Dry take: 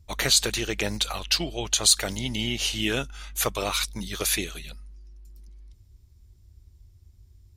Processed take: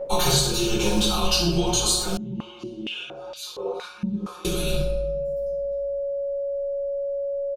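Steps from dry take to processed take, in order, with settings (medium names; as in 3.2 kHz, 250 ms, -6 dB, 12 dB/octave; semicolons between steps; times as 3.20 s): rattle on loud lows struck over -38 dBFS, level -29 dBFS; static phaser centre 390 Hz, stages 8; gate -49 dBFS, range -21 dB; comb 5.6 ms, depth 97%; whistle 560 Hz -39 dBFS; compression 6:1, threshold -35 dBFS, peak gain reduction 21 dB; simulated room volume 360 m³, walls mixed, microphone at 4.4 m; 2.17–4.45 s: step-sequenced band-pass 4.3 Hz 200–4100 Hz; trim +4.5 dB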